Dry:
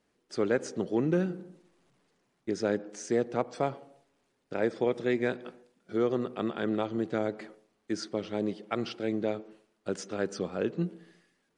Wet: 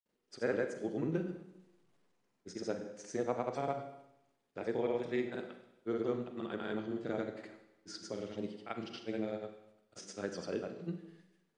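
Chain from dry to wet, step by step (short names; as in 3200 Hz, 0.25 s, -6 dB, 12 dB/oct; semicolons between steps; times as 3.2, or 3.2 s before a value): grains, pitch spread up and down by 0 st; Schroeder reverb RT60 0.87 s, combs from 33 ms, DRR 7 dB; gain -6.5 dB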